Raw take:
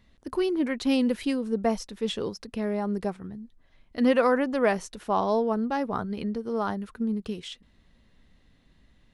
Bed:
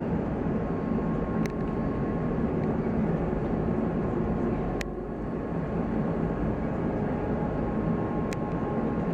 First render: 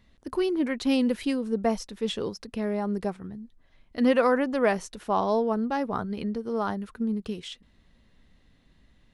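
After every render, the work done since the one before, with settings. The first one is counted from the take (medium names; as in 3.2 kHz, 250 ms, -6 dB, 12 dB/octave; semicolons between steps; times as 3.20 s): no audible change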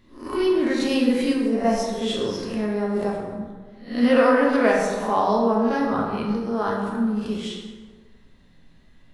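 reverse spectral sustain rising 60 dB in 0.42 s; plate-style reverb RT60 1.5 s, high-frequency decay 0.55×, DRR -2 dB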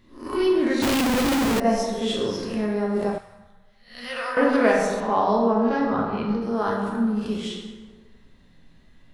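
0.82–1.60 s: Schmitt trigger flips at -36.5 dBFS; 3.18–4.37 s: amplifier tone stack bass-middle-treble 10-0-10; 5.00–6.42 s: distance through air 98 m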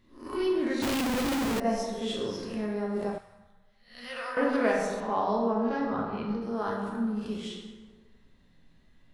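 trim -7 dB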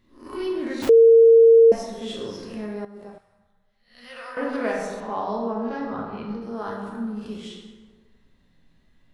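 0.89–1.72 s: bleep 457 Hz -8.5 dBFS; 2.85–4.76 s: fade in, from -12.5 dB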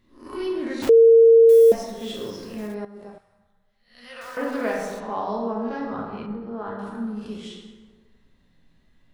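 1.49–2.75 s: block-companded coder 5-bit; 4.21–4.99 s: small samples zeroed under -41 dBFS; 6.26–6.79 s: distance through air 370 m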